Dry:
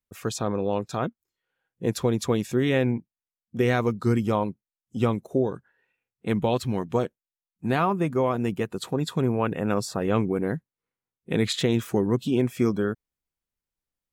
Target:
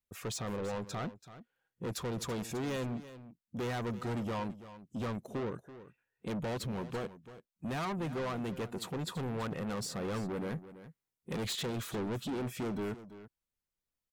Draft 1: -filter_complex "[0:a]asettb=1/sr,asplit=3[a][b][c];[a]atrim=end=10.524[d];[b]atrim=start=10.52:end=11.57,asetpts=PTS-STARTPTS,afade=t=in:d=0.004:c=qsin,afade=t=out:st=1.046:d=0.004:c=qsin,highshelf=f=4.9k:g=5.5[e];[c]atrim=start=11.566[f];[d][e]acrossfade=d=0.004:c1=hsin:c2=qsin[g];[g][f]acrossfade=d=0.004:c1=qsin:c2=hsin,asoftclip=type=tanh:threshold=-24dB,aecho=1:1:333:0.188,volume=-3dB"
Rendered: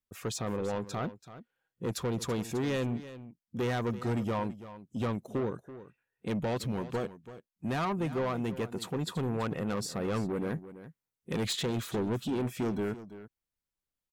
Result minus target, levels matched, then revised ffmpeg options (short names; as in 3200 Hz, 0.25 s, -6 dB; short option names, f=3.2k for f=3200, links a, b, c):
soft clip: distortion -4 dB
-filter_complex "[0:a]asettb=1/sr,asplit=3[a][b][c];[a]atrim=end=10.524[d];[b]atrim=start=10.52:end=11.57,asetpts=PTS-STARTPTS,afade=t=in:d=0.004:c=qsin,afade=t=out:st=1.046:d=0.004:c=qsin,highshelf=f=4.9k:g=5.5[e];[c]atrim=start=11.566[f];[d][e]acrossfade=d=0.004:c1=hsin:c2=qsin[g];[g][f]acrossfade=d=0.004:c1=qsin:c2=hsin,asoftclip=type=tanh:threshold=-30.5dB,aecho=1:1:333:0.188,volume=-3dB"